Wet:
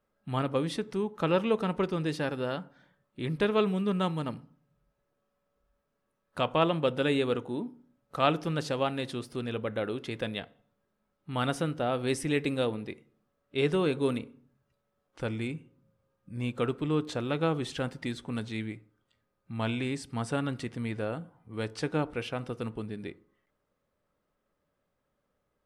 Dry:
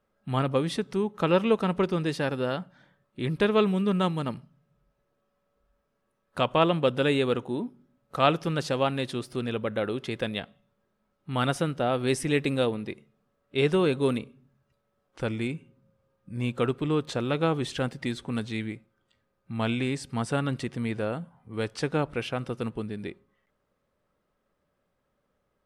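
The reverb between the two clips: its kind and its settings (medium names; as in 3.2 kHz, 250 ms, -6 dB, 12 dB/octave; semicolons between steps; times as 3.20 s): FDN reverb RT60 0.53 s, low-frequency decay 1.05×, high-frequency decay 0.4×, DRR 16 dB; trim -3.5 dB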